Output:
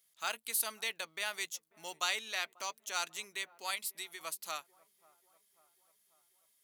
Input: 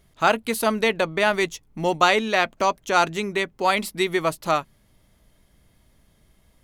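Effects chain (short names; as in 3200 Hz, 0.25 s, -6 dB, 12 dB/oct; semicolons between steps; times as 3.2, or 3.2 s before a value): 3.75–4.21 compressor 2:1, threshold -29 dBFS, peak gain reduction 7 dB; differentiator; on a send: dark delay 0.541 s, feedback 59%, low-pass 1000 Hz, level -22 dB; on the sum: gain -3.5 dB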